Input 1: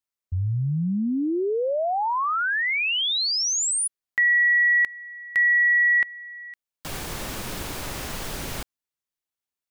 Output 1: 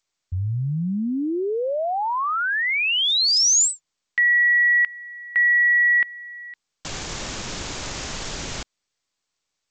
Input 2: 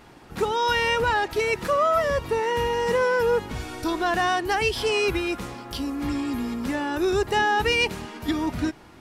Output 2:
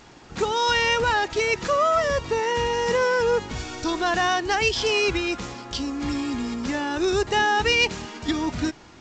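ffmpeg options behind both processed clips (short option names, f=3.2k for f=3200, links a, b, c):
-af "crystalizer=i=2:c=0" -ar 16000 -c:a g722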